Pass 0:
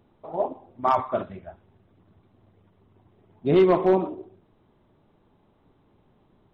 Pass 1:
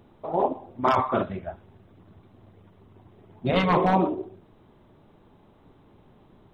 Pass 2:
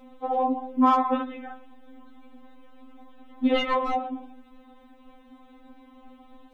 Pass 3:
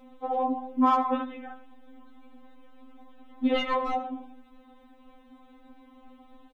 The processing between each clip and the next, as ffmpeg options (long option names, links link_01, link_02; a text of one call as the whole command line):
ffmpeg -i in.wav -af "afftfilt=real='re*lt(hypot(re,im),0.501)':imag='im*lt(hypot(re,im),0.501)':win_size=1024:overlap=0.75,volume=6.5dB" out.wav
ffmpeg -i in.wav -af "acompressor=threshold=-26dB:ratio=6,afftfilt=real='re*3.46*eq(mod(b,12),0)':imag='im*3.46*eq(mod(b,12),0)':win_size=2048:overlap=0.75,volume=8dB" out.wav
ffmpeg -i in.wav -af "aecho=1:1:84:0.119,volume=-2.5dB" out.wav